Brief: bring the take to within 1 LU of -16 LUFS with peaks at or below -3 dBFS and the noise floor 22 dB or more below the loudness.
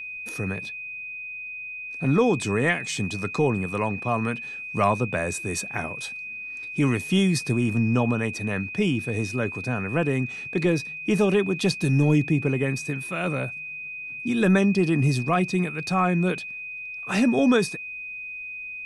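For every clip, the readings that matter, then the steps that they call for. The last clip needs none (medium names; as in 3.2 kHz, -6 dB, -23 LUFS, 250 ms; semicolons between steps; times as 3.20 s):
steady tone 2.5 kHz; tone level -33 dBFS; loudness -25.0 LUFS; peak level -9.0 dBFS; loudness target -16.0 LUFS
-> band-stop 2.5 kHz, Q 30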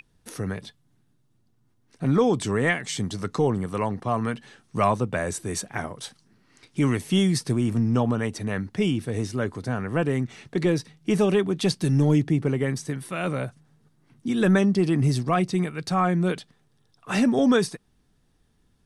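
steady tone not found; loudness -24.5 LUFS; peak level -9.5 dBFS; loudness target -16.0 LUFS
-> trim +8.5 dB; peak limiter -3 dBFS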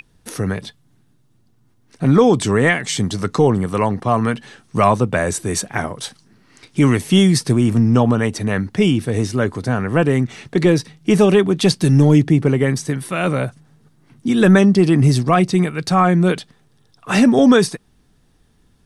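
loudness -16.5 LUFS; peak level -3.0 dBFS; noise floor -57 dBFS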